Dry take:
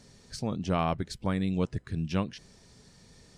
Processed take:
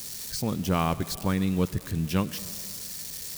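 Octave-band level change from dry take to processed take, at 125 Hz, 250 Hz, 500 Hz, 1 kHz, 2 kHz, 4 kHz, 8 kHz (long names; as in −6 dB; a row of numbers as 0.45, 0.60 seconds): +3.5, +3.5, +2.0, +2.5, +4.0, +7.0, +14.0 decibels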